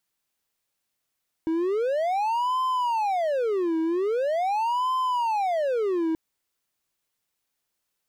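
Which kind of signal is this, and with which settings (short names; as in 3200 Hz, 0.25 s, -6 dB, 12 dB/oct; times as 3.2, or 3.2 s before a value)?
siren wail 322–1030 Hz 0.43/s triangle -20 dBFS 4.68 s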